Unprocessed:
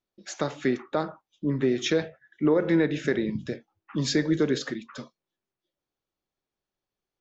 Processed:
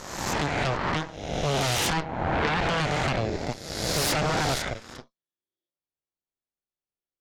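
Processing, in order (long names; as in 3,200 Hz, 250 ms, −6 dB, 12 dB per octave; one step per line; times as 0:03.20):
peak hold with a rise ahead of every peak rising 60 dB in 1.76 s
harmonic generator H 3 −6 dB, 5 −13 dB, 7 −26 dB, 8 −10 dB, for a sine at −8 dBFS
level −4 dB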